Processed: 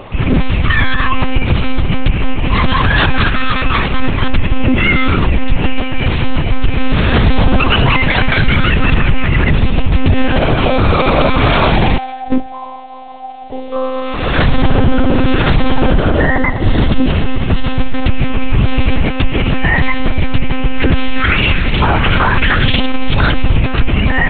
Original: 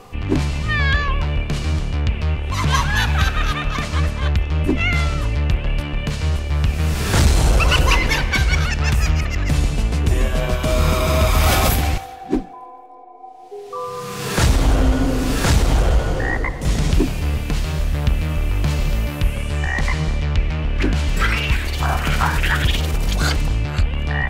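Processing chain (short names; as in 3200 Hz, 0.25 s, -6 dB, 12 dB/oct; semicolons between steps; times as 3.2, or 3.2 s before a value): added noise white -51 dBFS; monotone LPC vocoder at 8 kHz 260 Hz; 16.2–17.75 notch 2400 Hz, Q 9.1; maximiser +11.5 dB; gain -1 dB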